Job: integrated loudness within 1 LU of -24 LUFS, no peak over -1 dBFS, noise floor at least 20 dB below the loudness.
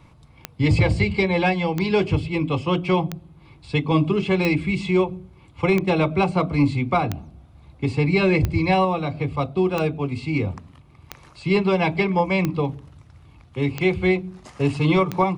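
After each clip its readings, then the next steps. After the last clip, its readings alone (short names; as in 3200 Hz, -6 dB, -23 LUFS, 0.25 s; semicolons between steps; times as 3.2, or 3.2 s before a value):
clicks 12; loudness -22.0 LUFS; peak -9.0 dBFS; loudness target -24.0 LUFS
-> de-click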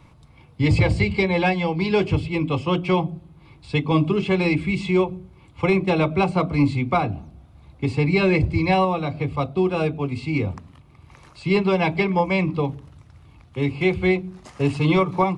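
clicks 0; loudness -22.0 LUFS; peak -9.0 dBFS; loudness target -24.0 LUFS
-> gain -2 dB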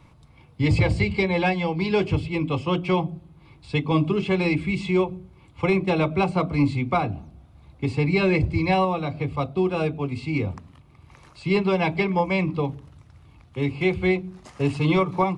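loudness -24.0 LUFS; peak -11.0 dBFS; noise floor -53 dBFS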